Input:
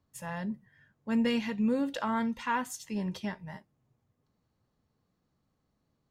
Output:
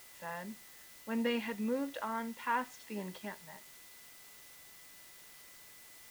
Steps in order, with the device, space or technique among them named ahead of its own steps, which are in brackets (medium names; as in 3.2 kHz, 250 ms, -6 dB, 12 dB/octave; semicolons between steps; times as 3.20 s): shortwave radio (band-pass 300–3000 Hz; tremolo 0.71 Hz, depth 40%; whistle 2 kHz -62 dBFS; white noise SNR 15 dB); trim -1 dB